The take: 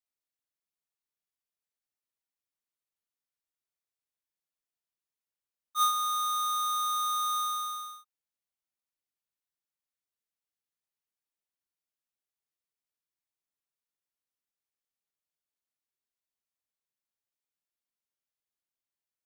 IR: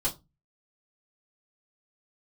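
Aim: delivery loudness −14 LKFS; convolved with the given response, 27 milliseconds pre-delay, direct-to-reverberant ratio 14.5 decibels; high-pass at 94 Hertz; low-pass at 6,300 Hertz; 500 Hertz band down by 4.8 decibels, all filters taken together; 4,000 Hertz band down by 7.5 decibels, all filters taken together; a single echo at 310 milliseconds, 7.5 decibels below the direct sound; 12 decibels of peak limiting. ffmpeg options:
-filter_complex "[0:a]highpass=94,lowpass=6300,equalizer=frequency=500:width_type=o:gain=-6.5,equalizer=frequency=4000:width_type=o:gain=-7.5,alimiter=level_in=9.5dB:limit=-24dB:level=0:latency=1,volume=-9.5dB,aecho=1:1:310:0.422,asplit=2[link_01][link_02];[1:a]atrim=start_sample=2205,adelay=27[link_03];[link_02][link_03]afir=irnorm=-1:irlink=0,volume=-20.5dB[link_04];[link_01][link_04]amix=inputs=2:normalize=0,volume=23dB"

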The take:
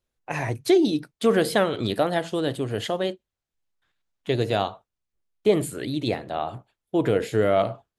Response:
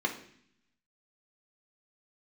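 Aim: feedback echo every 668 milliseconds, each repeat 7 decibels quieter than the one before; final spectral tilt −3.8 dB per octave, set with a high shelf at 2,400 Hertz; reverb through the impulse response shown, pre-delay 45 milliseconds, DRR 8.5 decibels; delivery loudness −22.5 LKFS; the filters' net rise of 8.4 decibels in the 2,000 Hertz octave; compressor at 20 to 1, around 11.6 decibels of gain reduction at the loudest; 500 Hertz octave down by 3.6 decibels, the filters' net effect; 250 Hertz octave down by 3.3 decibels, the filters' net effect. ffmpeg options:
-filter_complex "[0:a]equalizer=frequency=250:width_type=o:gain=-3,equalizer=frequency=500:width_type=o:gain=-4.5,equalizer=frequency=2000:width_type=o:gain=8,highshelf=frequency=2400:gain=6,acompressor=threshold=-26dB:ratio=20,aecho=1:1:668|1336|2004|2672|3340:0.447|0.201|0.0905|0.0407|0.0183,asplit=2[link_01][link_02];[1:a]atrim=start_sample=2205,adelay=45[link_03];[link_02][link_03]afir=irnorm=-1:irlink=0,volume=-16dB[link_04];[link_01][link_04]amix=inputs=2:normalize=0,volume=8.5dB"

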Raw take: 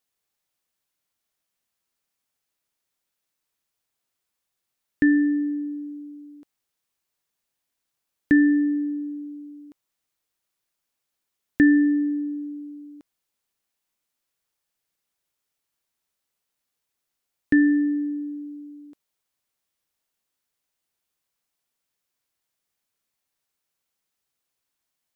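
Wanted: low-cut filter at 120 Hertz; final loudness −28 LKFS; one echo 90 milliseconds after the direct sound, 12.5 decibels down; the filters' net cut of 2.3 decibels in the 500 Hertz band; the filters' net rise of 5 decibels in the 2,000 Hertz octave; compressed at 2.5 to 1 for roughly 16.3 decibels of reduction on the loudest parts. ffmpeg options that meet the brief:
ffmpeg -i in.wav -af "highpass=120,equalizer=frequency=500:width_type=o:gain=-6.5,equalizer=frequency=2000:width_type=o:gain=6,acompressor=threshold=-39dB:ratio=2.5,aecho=1:1:90:0.237,volume=10dB" out.wav

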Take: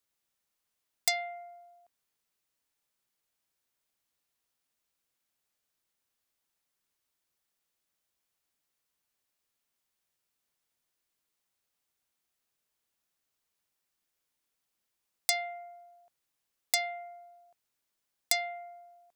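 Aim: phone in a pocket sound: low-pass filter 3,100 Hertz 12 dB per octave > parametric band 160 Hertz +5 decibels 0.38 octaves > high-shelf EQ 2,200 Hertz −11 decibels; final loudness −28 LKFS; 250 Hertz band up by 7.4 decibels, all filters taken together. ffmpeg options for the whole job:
ffmpeg -i in.wav -af "lowpass=3100,equalizer=frequency=160:width_type=o:width=0.38:gain=5,equalizer=frequency=250:width_type=o:gain=9,highshelf=frequency=2200:gain=-11,volume=12dB" out.wav

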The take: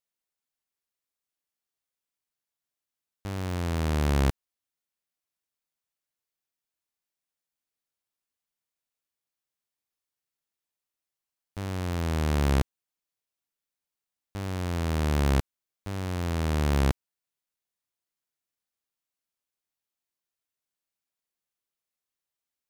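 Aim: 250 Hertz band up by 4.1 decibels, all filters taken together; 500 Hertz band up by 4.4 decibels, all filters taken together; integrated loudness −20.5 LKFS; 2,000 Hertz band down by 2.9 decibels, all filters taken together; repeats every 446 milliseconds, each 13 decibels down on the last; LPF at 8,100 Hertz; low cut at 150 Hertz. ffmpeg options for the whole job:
ffmpeg -i in.wav -af "highpass=150,lowpass=8100,equalizer=frequency=250:width_type=o:gain=5.5,equalizer=frequency=500:width_type=o:gain=4,equalizer=frequency=2000:width_type=o:gain=-4,aecho=1:1:446|892|1338:0.224|0.0493|0.0108,volume=9.5dB" out.wav

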